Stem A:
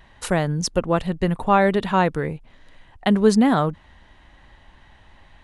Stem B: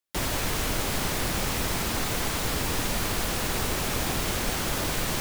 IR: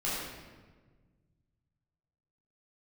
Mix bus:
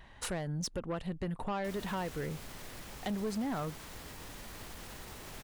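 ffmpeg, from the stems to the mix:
-filter_complex "[0:a]acompressor=threshold=-27dB:ratio=4,volume=-4dB[link_01];[1:a]alimiter=limit=-19dB:level=0:latency=1:release=34,adelay=1500,volume=-18.5dB[link_02];[link_01][link_02]amix=inputs=2:normalize=0,asoftclip=type=tanh:threshold=-29.5dB"

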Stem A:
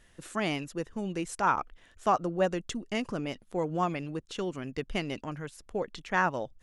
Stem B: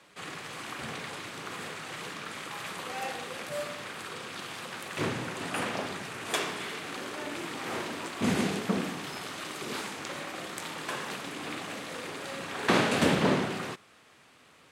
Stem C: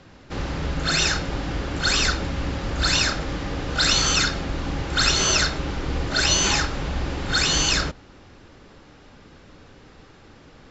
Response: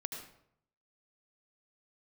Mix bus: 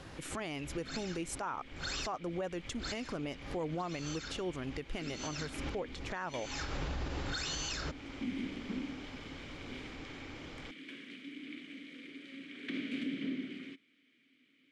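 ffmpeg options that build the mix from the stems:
-filter_complex "[0:a]volume=1.5dB,asplit=2[link_01][link_02];[1:a]asplit=3[link_03][link_04][link_05];[link_03]bandpass=frequency=270:width_type=q:width=8,volume=0dB[link_06];[link_04]bandpass=frequency=2290:width_type=q:width=8,volume=-6dB[link_07];[link_05]bandpass=frequency=3010:width_type=q:width=8,volume=-9dB[link_08];[link_06][link_07][link_08]amix=inputs=3:normalize=0,volume=1dB[link_09];[2:a]volume=-0.5dB[link_10];[link_02]apad=whole_len=472250[link_11];[link_10][link_11]sidechaincompress=threshold=-53dB:ratio=8:attack=16:release=245[link_12];[link_01][link_12]amix=inputs=2:normalize=0,equalizer=frequency=200:width_type=o:width=0.24:gain=-6.5,acompressor=threshold=-27dB:ratio=2,volume=0dB[link_13];[link_09][link_13]amix=inputs=2:normalize=0,alimiter=level_in=4.5dB:limit=-24dB:level=0:latency=1:release=220,volume=-4.5dB"

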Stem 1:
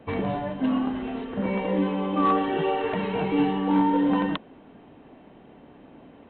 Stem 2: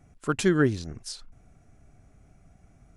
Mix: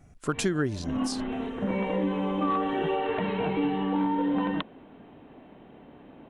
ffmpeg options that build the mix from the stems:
ffmpeg -i stem1.wav -i stem2.wav -filter_complex "[0:a]adelay=250,volume=-0.5dB[link_01];[1:a]volume=2dB,asplit=2[link_02][link_03];[link_03]apad=whole_len=288854[link_04];[link_01][link_04]sidechaincompress=threshold=-38dB:ratio=5:attack=5.5:release=110[link_05];[link_05][link_02]amix=inputs=2:normalize=0,acompressor=threshold=-23dB:ratio=6" out.wav

